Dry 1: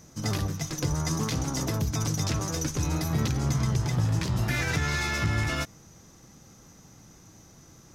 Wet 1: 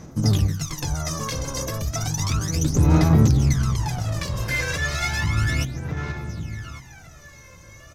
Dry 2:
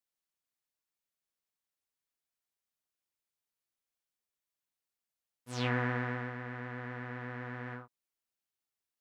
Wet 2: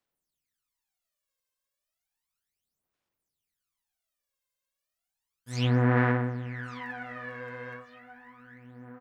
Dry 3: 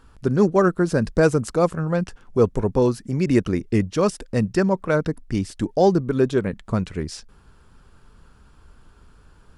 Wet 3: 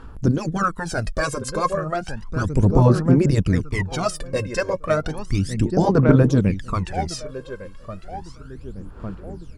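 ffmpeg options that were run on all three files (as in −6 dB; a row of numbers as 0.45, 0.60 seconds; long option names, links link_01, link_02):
-filter_complex "[0:a]asplit=2[link_01][link_02];[link_02]adelay=1154,lowpass=frequency=4300:poles=1,volume=-13dB,asplit=2[link_03][link_04];[link_04]adelay=1154,lowpass=frequency=4300:poles=1,volume=0.36,asplit=2[link_05][link_06];[link_06]adelay=1154,lowpass=frequency=4300:poles=1,volume=0.36,asplit=2[link_07][link_08];[link_08]adelay=1154,lowpass=frequency=4300:poles=1,volume=0.36[link_09];[link_01][link_03][link_05][link_07][link_09]amix=inputs=5:normalize=0,afftfilt=real='re*lt(hypot(re,im),0.794)':imag='im*lt(hypot(re,im),0.794)':win_size=1024:overlap=0.75,aphaser=in_gain=1:out_gain=1:delay=1.9:decay=0.76:speed=0.33:type=sinusoidal"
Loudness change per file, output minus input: +5.5, +8.5, +0.5 LU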